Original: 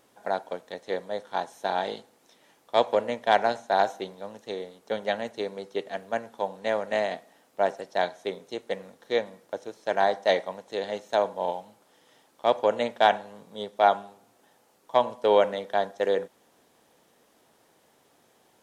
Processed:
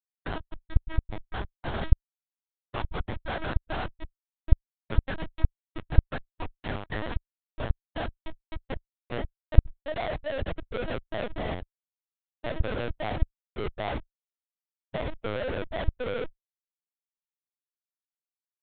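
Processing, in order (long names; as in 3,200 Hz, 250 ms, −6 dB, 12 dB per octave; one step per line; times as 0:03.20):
high-pass filter sweep 1,300 Hz → 390 Hz, 0:07.58–0:11.40
comparator with hysteresis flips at −27.5 dBFS
linear-prediction vocoder at 8 kHz pitch kept
level −4.5 dB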